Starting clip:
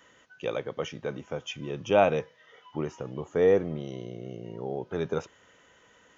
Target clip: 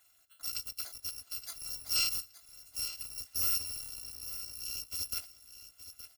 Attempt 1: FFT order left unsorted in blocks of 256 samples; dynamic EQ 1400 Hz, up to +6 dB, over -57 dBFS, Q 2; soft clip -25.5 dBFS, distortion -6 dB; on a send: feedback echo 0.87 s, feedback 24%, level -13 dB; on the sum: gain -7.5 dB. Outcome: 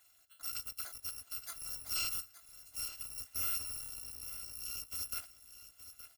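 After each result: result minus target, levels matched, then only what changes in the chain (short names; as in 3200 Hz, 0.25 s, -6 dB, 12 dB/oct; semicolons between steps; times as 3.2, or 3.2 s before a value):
1000 Hz band +5.0 dB; soft clip: distortion +5 dB
change: dynamic EQ 4800 Hz, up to +6 dB, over -57 dBFS, Q 2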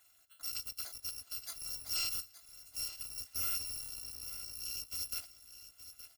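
soft clip: distortion +6 dB
change: soft clip -17.5 dBFS, distortion -12 dB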